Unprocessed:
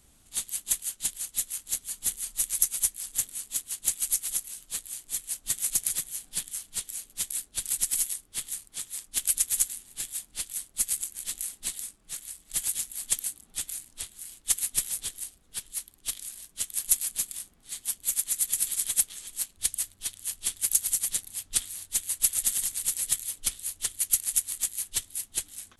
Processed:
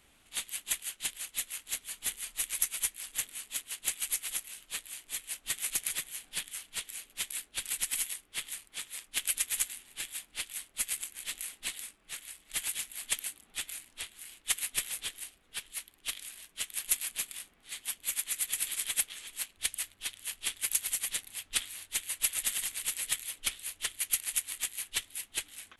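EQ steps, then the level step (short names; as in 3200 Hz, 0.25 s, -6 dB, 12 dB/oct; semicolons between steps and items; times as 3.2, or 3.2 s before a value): tone controls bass -8 dB, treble -13 dB; bell 2500 Hz +8 dB 1.4 oct; high shelf 8500 Hz +10 dB; 0.0 dB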